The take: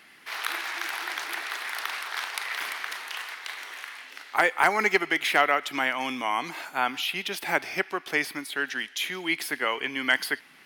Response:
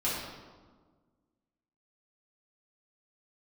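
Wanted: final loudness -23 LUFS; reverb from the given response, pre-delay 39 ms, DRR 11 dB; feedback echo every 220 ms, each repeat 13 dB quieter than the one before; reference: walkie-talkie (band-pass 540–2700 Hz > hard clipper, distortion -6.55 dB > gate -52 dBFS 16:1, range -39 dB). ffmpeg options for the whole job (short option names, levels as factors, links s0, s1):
-filter_complex "[0:a]aecho=1:1:220|440|660:0.224|0.0493|0.0108,asplit=2[s0][s1];[1:a]atrim=start_sample=2205,adelay=39[s2];[s1][s2]afir=irnorm=-1:irlink=0,volume=0.112[s3];[s0][s3]amix=inputs=2:normalize=0,highpass=540,lowpass=2700,asoftclip=type=hard:threshold=0.0562,agate=range=0.0112:threshold=0.00251:ratio=16,volume=2.66"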